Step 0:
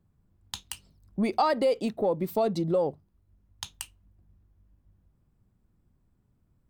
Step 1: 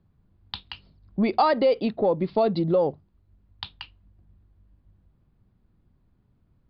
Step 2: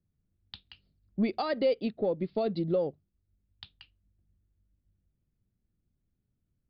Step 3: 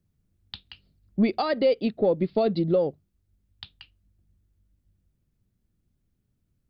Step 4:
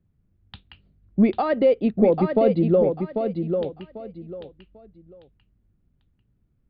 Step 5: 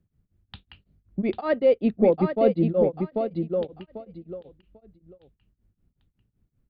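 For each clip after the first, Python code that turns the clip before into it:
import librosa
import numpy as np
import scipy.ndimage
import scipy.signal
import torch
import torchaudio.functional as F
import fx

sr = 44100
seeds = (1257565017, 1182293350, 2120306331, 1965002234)

y1 = scipy.signal.sosfilt(scipy.signal.butter(16, 4800.0, 'lowpass', fs=sr, output='sos'), x)
y1 = F.gain(torch.from_numpy(y1), 4.0).numpy()
y2 = fx.peak_eq(y1, sr, hz=960.0, db=-11.0, octaves=0.77)
y2 = fx.upward_expand(y2, sr, threshold_db=-40.0, expansion=1.5)
y2 = F.gain(torch.from_numpy(y2), -3.5).numpy()
y3 = fx.rider(y2, sr, range_db=10, speed_s=0.5)
y3 = F.gain(torch.from_numpy(y3), 6.5).numpy()
y4 = fx.air_absorb(y3, sr, metres=490.0)
y4 = fx.echo_feedback(y4, sr, ms=794, feedback_pct=25, wet_db=-6.0)
y4 = F.gain(torch.from_numpy(y4), 5.0).numpy()
y5 = y4 * np.abs(np.cos(np.pi * 5.3 * np.arange(len(y4)) / sr))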